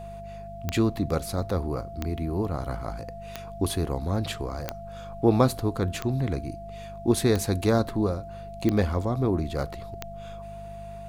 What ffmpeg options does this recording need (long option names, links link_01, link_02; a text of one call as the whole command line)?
ffmpeg -i in.wav -af "adeclick=threshold=4,bandreject=frequency=50.3:width_type=h:width=4,bandreject=frequency=100.6:width_type=h:width=4,bandreject=frequency=150.9:width_type=h:width=4,bandreject=frequency=201.2:width_type=h:width=4,bandreject=frequency=680:width=30" out.wav